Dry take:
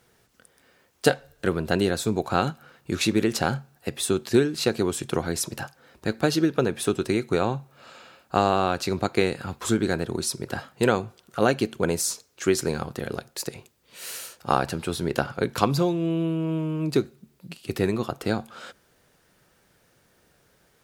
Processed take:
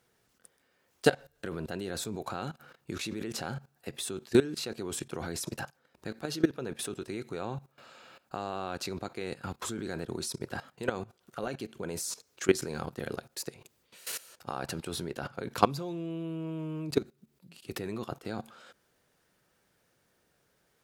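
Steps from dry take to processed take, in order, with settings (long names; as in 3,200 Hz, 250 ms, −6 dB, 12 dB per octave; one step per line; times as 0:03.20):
low-shelf EQ 89 Hz −5 dB
output level in coarse steps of 18 dB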